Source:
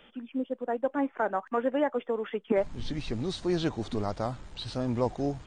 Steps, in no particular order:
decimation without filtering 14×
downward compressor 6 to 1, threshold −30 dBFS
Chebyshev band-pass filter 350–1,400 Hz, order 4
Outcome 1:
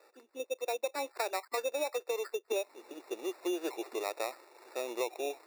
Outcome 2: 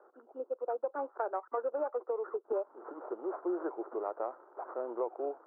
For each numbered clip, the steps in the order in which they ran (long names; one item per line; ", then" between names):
Chebyshev band-pass filter, then downward compressor, then decimation without filtering
decimation without filtering, then Chebyshev band-pass filter, then downward compressor